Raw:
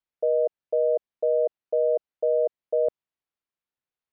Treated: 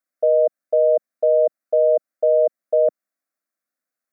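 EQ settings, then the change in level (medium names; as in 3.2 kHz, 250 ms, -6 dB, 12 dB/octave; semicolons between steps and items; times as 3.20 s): high-pass 210 Hz 12 dB/octave; static phaser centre 610 Hz, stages 8; +8.5 dB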